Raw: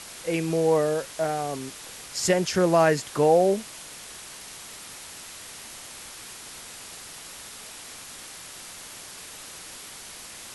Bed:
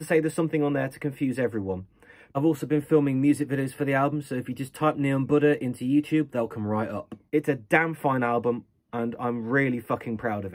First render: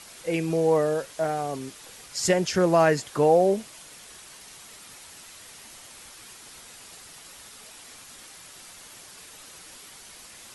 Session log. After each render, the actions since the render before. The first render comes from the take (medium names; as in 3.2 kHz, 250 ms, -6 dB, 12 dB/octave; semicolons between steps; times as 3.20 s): noise reduction 6 dB, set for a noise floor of -42 dBFS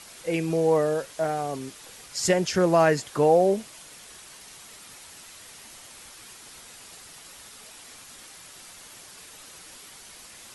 no audible change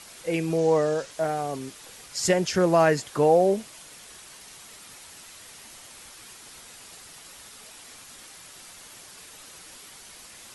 0.58–1.11 s: resonant low-pass 6.6 kHz, resonance Q 1.5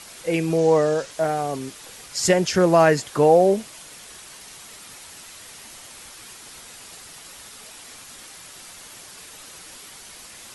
trim +4 dB